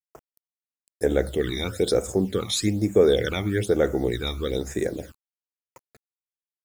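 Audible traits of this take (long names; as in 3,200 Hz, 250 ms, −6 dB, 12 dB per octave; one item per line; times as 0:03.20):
a quantiser's noise floor 8 bits, dither none
phaser sweep stages 12, 1.1 Hz, lowest notch 480–4,200 Hz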